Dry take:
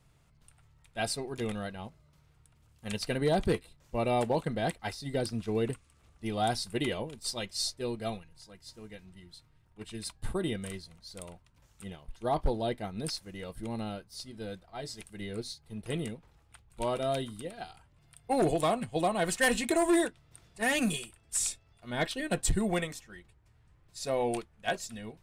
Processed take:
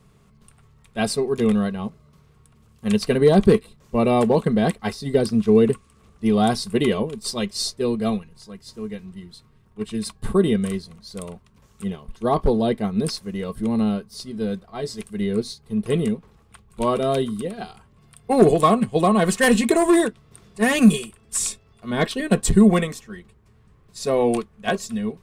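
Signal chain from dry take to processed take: small resonant body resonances 210/410/1100 Hz, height 13 dB, ringing for 55 ms; gain +6.5 dB

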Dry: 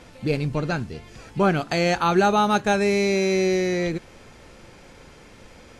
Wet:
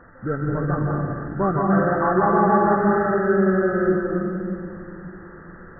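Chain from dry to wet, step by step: nonlinear frequency compression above 1100 Hz 4:1; reverb RT60 2.5 s, pre-delay 0.154 s, DRR -1 dB; gain -2.5 dB

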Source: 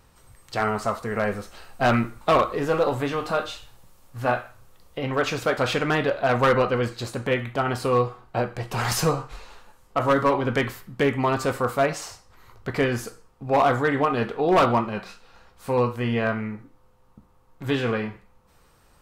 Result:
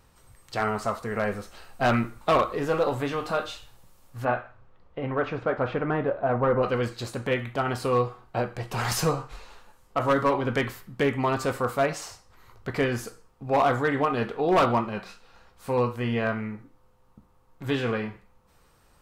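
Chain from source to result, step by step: 4.24–6.62 LPF 2500 Hz -> 1000 Hz 12 dB/oct; gain -2.5 dB

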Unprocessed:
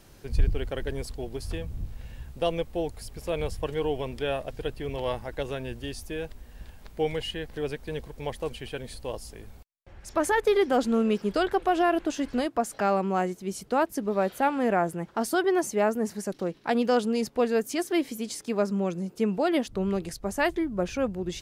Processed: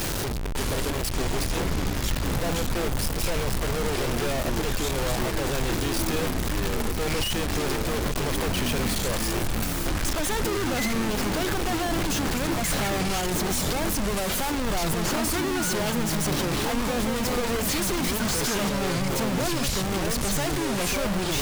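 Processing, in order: infinite clipping; echoes that change speed 0.56 s, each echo -6 st, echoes 3

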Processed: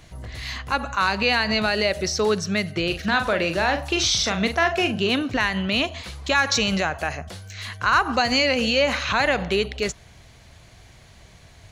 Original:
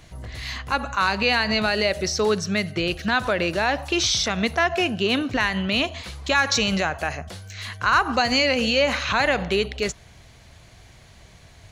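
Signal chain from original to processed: 2.86–5.1 doubler 42 ms -8 dB

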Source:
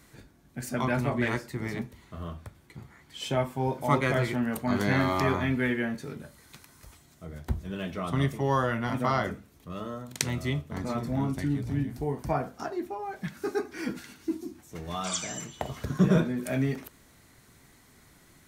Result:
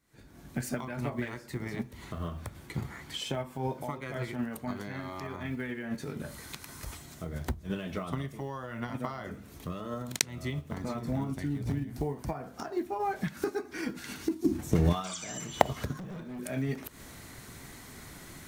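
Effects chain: block floating point 7-bit; recorder AGC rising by 78 dB/s; 14.44–14.93 low shelf 430 Hz +10.5 dB; 15.98–16.39 overloaded stage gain 18 dB; gate -16 dBFS, range -6 dB; gain -14 dB

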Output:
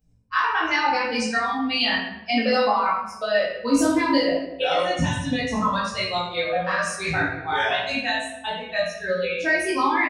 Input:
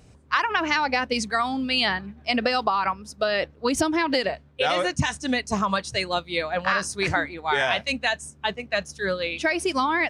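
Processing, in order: per-bin expansion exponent 1.5; doubler 18 ms -2 dB; shoebox room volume 280 m³, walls mixed, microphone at 2.1 m; gain -4.5 dB

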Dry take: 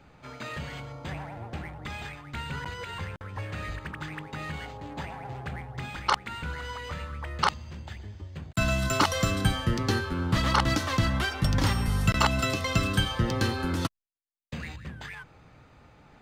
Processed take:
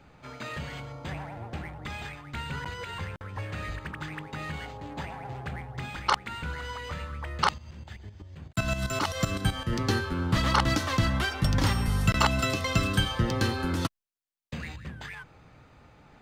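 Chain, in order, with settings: 7.58–9.73 tremolo saw up 7.8 Hz, depth 70%

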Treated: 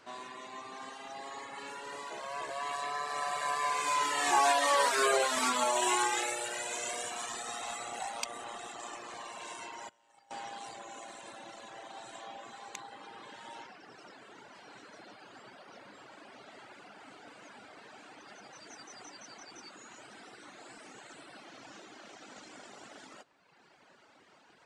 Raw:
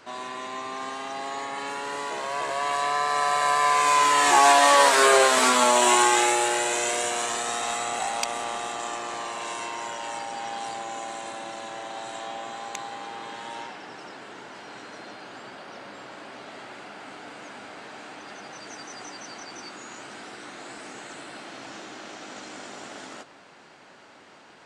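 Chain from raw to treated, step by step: 9.89–10.31 gate -30 dBFS, range -16 dB; reverb removal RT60 1.4 s; gain -7.5 dB

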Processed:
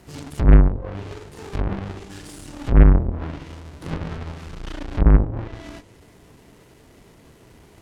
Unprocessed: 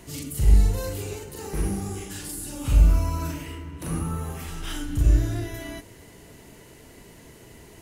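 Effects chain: half-waves squared off; treble ducked by the level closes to 450 Hz, closed at -14 dBFS; added harmonics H 4 -17 dB, 6 -12 dB, 7 -22 dB, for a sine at -4.5 dBFS

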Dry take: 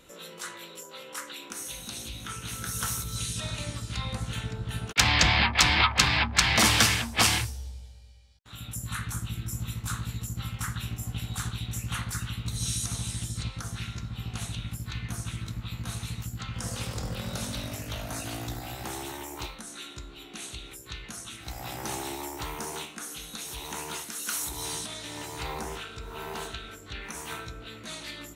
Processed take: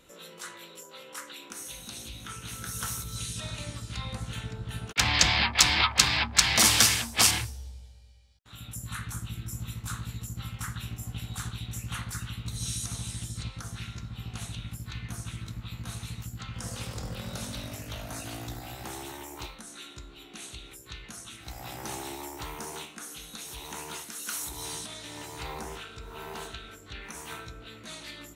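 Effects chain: 5.14–7.31 tone controls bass -2 dB, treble +8 dB; gain -3 dB

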